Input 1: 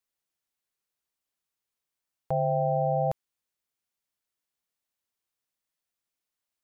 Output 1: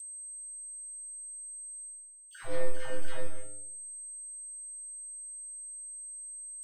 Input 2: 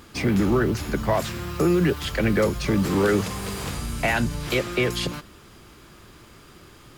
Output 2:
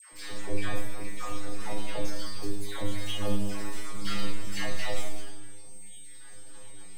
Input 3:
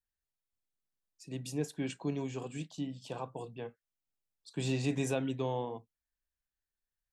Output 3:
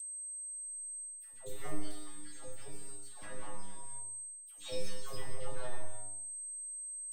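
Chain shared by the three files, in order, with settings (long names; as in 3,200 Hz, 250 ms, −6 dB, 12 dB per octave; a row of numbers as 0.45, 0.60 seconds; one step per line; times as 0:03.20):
time-frequency cells dropped at random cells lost 65%
high-shelf EQ 8,500 Hz −11.5 dB
full-wave rectification
in parallel at +2 dB: downward compressor, threshold −35 dBFS
on the sum: parametric band 2,000 Hz +2 dB
stiff-string resonator 100 Hz, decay 0.63 s, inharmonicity 0.002
reverb whose tail is shaped and stops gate 320 ms falling, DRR −0.5 dB
steady tone 8,300 Hz −55 dBFS
reversed playback
upward compression, threshold −39 dBFS
reversed playback
all-pass dispersion lows, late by 128 ms, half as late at 860 Hz
level +4.5 dB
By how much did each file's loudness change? −12.5, −13.5, −5.5 LU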